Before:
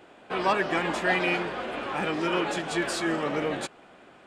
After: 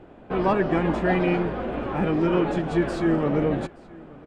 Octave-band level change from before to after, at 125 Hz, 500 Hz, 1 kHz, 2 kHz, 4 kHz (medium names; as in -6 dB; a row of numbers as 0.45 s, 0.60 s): +12.0 dB, +5.0 dB, +0.5 dB, -4.0 dB, -7.5 dB